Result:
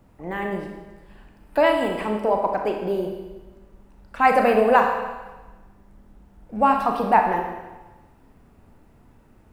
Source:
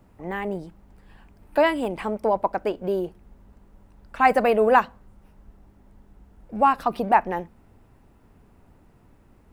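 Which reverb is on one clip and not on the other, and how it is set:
four-comb reverb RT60 1.2 s, combs from 26 ms, DRR 2.5 dB

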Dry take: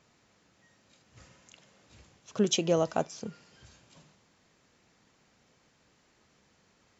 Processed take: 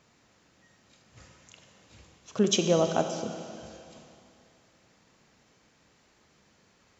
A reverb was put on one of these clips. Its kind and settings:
four-comb reverb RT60 2.6 s, combs from 28 ms, DRR 6.5 dB
level +2 dB

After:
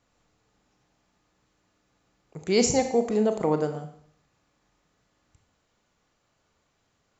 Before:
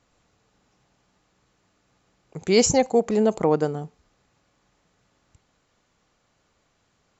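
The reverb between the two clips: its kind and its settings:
four-comb reverb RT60 0.64 s, combs from 26 ms, DRR 6.5 dB
level −4.5 dB

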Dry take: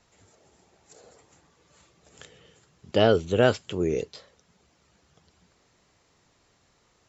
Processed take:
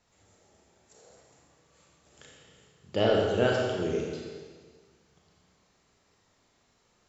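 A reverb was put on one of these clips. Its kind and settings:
four-comb reverb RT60 1.6 s, combs from 29 ms, DRR −2 dB
level −7 dB

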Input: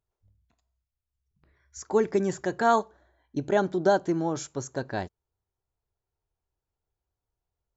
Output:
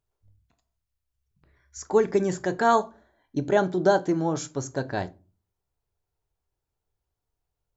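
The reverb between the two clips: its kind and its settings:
rectangular room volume 140 cubic metres, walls furnished, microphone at 0.36 metres
level +2 dB

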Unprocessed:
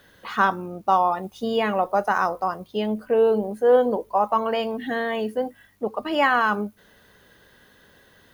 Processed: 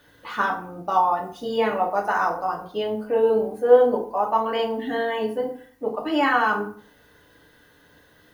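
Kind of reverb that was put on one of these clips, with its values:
feedback delay network reverb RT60 0.5 s, low-frequency decay 1.05×, high-frequency decay 0.65×, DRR −1 dB
level −4 dB

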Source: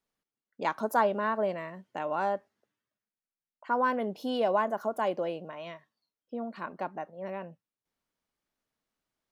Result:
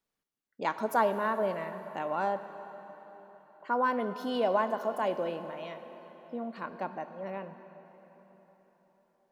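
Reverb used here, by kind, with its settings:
dense smooth reverb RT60 4.5 s, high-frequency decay 0.8×, DRR 9.5 dB
level −1 dB

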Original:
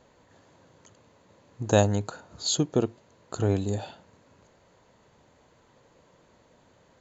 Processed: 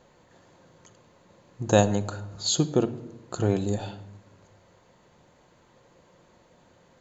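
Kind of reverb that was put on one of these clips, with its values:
rectangular room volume 3,100 cubic metres, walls furnished, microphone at 0.9 metres
level +1 dB

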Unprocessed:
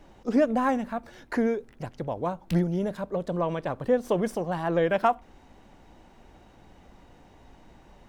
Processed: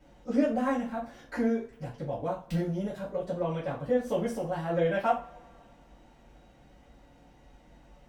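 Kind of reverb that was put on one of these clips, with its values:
coupled-rooms reverb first 0.31 s, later 2.2 s, from −28 dB, DRR −8.5 dB
level −13 dB

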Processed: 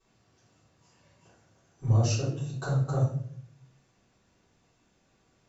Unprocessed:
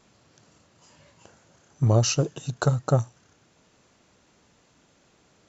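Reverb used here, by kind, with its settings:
rectangular room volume 80 cubic metres, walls mixed, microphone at 3.5 metres
level −20.5 dB

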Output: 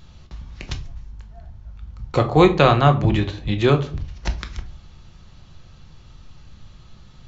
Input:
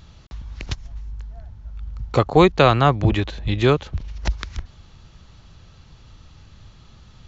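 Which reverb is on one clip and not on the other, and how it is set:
rectangular room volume 290 cubic metres, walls furnished, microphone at 0.94 metres
level −1.5 dB

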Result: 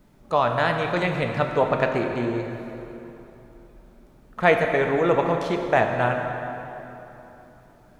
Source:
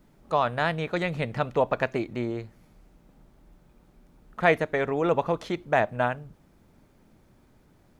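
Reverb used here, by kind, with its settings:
dense smooth reverb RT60 3.3 s, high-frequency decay 0.7×, DRR 3 dB
level +2.5 dB

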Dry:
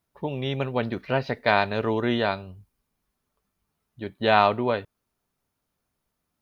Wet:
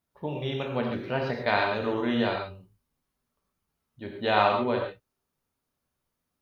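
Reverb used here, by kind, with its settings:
reverb whose tail is shaped and stops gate 160 ms flat, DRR 0.5 dB
level −5.5 dB

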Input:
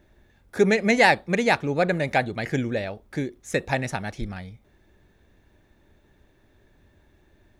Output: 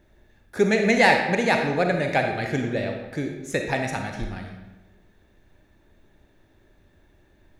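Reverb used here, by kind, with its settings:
comb and all-pass reverb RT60 1.1 s, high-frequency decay 0.75×, pre-delay 5 ms, DRR 3 dB
level −1 dB

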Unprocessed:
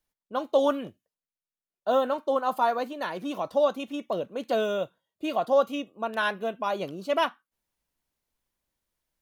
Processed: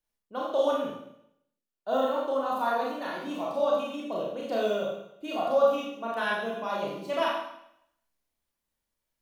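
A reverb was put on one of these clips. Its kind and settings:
four-comb reverb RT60 0.75 s, combs from 27 ms, DRR −4 dB
level −7 dB

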